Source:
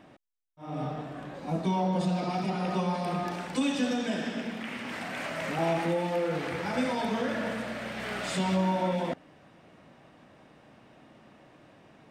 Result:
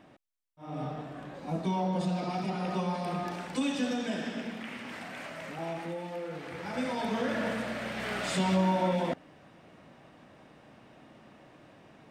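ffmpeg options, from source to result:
-af "volume=2.24,afade=t=out:st=4.46:d=1.1:silence=0.473151,afade=t=in:st=6.44:d=1:silence=0.334965"

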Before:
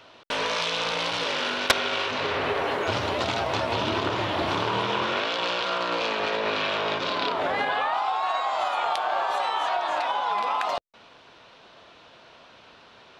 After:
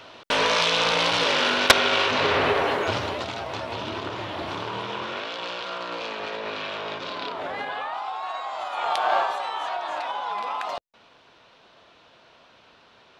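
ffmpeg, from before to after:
-af "volume=6.31,afade=t=out:st=2.38:d=0.9:silence=0.281838,afade=t=in:st=8.7:d=0.45:silence=0.298538,afade=t=out:st=9.15:d=0.2:silence=0.375837"

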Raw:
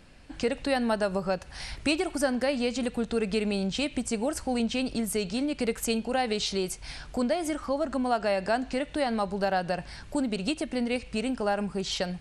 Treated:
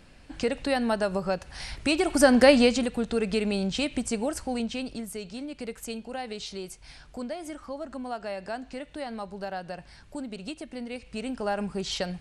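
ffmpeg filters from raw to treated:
-af "volume=8.41,afade=t=in:st=1.89:d=0.61:silence=0.298538,afade=t=out:st=2.5:d=0.36:silence=0.316228,afade=t=out:st=4.06:d=1.07:silence=0.354813,afade=t=in:st=10.95:d=0.68:silence=0.421697"

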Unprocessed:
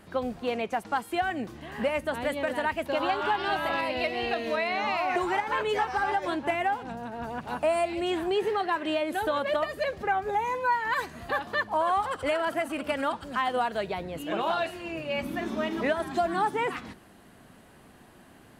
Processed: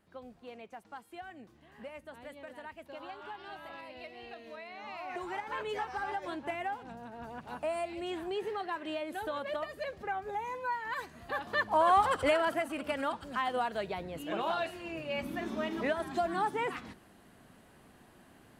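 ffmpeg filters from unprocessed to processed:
-af "volume=1.33,afade=t=in:st=4.75:d=0.84:silence=0.354813,afade=t=in:st=11.26:d=0.8:silence=0.266073,afade=t=out:st=12.06:d=0.61:silence=0.421697"

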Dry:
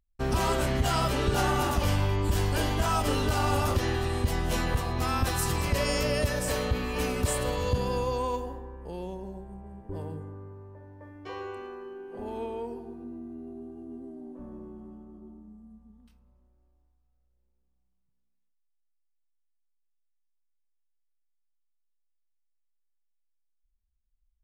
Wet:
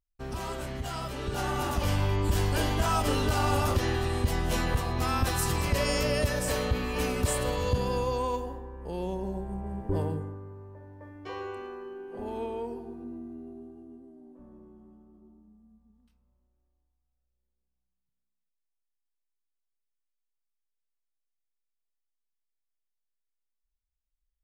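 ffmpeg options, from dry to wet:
-af "volume=2.99,afade=t=in:st=1.14:d=1:silence=0.354813,afade=t=in:st=8.72:d=1.1:silence=0.334965,afade=t=out:st=9.82:d=0.58:silence=0.354813,afade=t=out:st=13.13:d=0.92:silence=0.354813"

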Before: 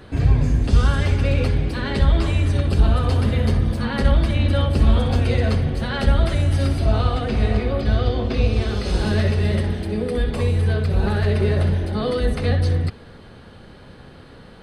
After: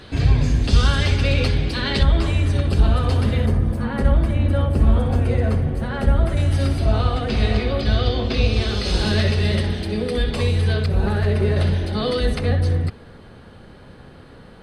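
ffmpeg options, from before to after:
-af "asetnsamples=n=441:p=0,asendcmd='2.03 equalizer g 1;3.46 equalizer g -11;6.37 equalizer g 0.5;7.3 equalizer g 8;10.86 equalizer g -2;11.56 equalizer g 6.5;12.39 equalizer g -3',equalizer=f=4100:t=o:w=1.7:g=9.5"

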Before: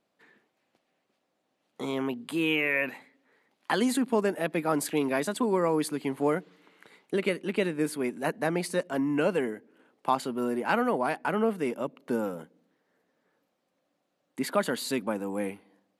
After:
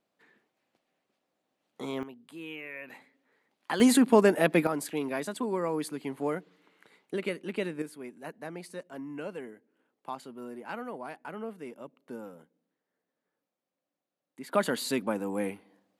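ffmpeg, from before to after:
-af "asetnsamples=n=441:p=0,asendcmd='2.03 volume volume -15dB;2.9 volume volume -4.5dB;3.8 volume volume 5.5dB;4.67 volume volume -5dB;7.82 volume volume -12.5dB;14.53 volume volume 0dB',volume=0.668"

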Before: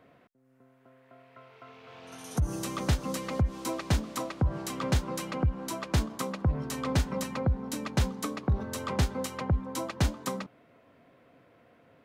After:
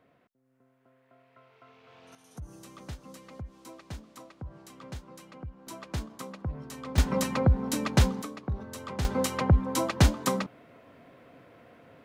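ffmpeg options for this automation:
-af "asetnsamples=n=441:p=0,asendcmd='2.15 volume volume -14.5dB;5.67 volume volume -7.5dB;6.98 volume volume 5dB;8.22 volume volume -5.5dB;9.05 volume volume 6dB',volume=0.501"

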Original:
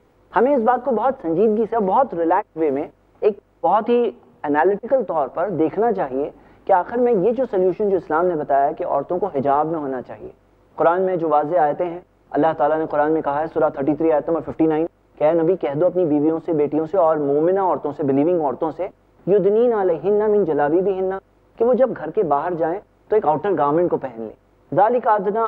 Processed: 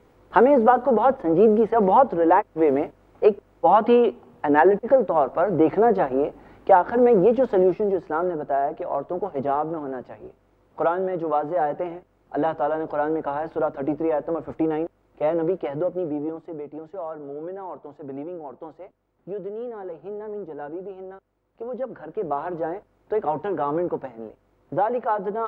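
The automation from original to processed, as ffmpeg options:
-af "volume=3.16,afade=t=out:st=7.53:d=0.48:silence=0.473151,afade=t=out:st=15.63:d=1:silence=0.298538,afade=t=in:st=21.67:d=0.79:silence=0.334965"

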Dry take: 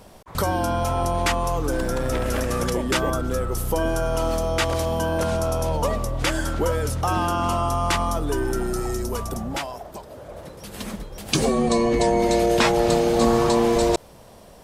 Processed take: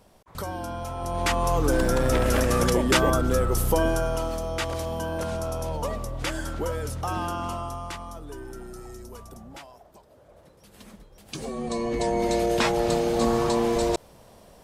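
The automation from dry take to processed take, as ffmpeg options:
-af "volume=4.22,afade=t=in:st=0.99:d=0.65:silence=0.251189,afade=t=out:st=3.65:d=0.65:silence=0.375837,afade=t=out:st=7.27:d=0.71:silence=0.375837,afade=t=in:st=11.38:d=0.87:silence=0.298538"

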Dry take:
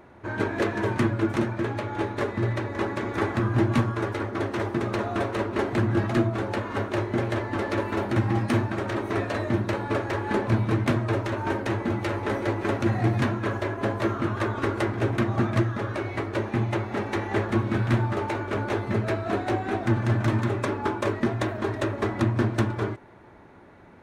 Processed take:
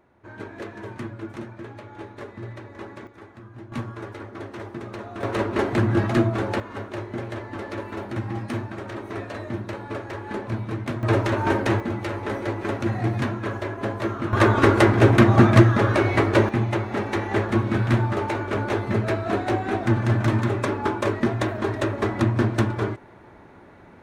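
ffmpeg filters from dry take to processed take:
-af "asetnsamples=n=441:p=0,asendcmd='3.07 volume volume -19.5dB;3.72 volume volume -8dB;5.23 volume volume 3dB;6.6 volume volume -5.5dB;11.03 volume volume 5.5dB;11.8 volume volume -1dB;14.33 volume volume 10dB;16.49 volume volume 2.5dB',volume=0.299"

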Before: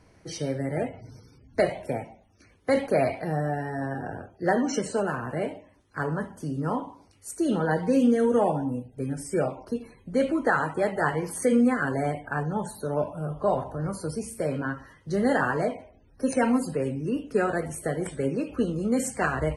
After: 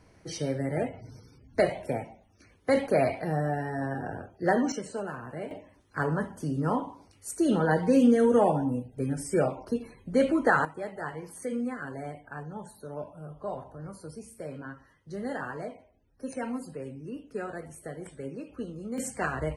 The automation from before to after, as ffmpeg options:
-af "asetnsamples=n=441:p=0,asendcmd='4.72 volume volume -8dB;5.51 volume volume 0.5dB;10.65 volume volume -11dB;18.98 volume volume -4.5dB',volume=0.891"

